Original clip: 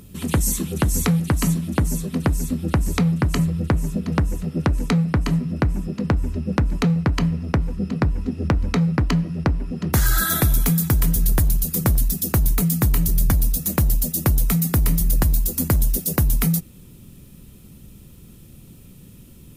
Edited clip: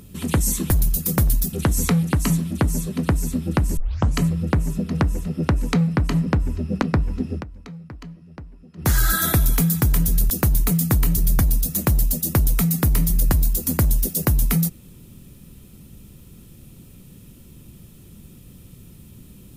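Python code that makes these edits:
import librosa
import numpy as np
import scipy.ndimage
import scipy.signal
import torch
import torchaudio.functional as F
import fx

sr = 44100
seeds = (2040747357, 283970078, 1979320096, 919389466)

y = fx.edit(x, sr, fx.tape_start(start_s=2.94, length_s=0.4),
    fx.cut(start_s=5.43, length_s=0.6),
    fx.cut(start_s=6.59, length_s=1.31),
    fx.fade_down_up(start_s=8.4, length_s=1.57, db=-18.5, fade_s=0.12),
    fx.move(start_s=11.38, length_s=0.83, to_s=0.7), tone=tone)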